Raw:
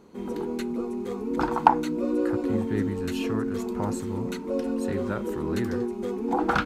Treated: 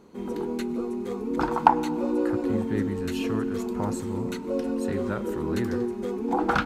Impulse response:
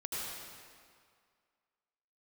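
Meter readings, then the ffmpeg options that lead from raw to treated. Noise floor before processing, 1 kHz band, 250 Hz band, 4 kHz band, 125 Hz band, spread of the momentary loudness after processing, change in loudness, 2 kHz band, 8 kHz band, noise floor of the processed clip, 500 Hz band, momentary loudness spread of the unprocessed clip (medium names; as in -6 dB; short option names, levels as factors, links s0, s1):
-34 dBFS, 0.0 dB, 0.0 dB, 0.0 dB, 0.0 dB, 9 LU, 0.0 dB, 0.0 dB, 0.0 dB, -34 dBFS, 0.0 dB, 9 LU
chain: -filter_complex "[0:a]asplit=2[s0][s1];[1:a]atrim=start_sample=2205,adelay=25[s2];[s1][s2]afir=irnorm=-1:irlink=0,volume=0.112[s3];[s0][s3]amix=inputs=2:normalize=0"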